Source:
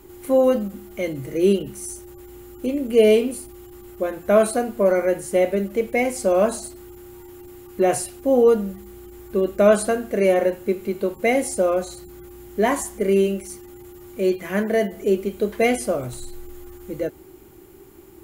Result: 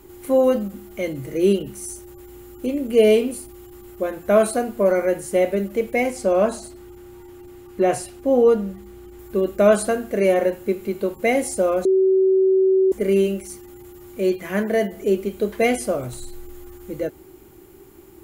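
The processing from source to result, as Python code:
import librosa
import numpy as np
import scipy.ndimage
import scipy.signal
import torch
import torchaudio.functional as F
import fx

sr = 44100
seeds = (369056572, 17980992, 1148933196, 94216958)

y = fx.high_shelf(x, sr, hz=7500.0, db=-9.0, at=(6.1, 9.19))
y = fx.edit(y, sr, fx.bleep(start_s=11.85, length_s=1.07, hz=380.0, db=-13.0), tone=tone)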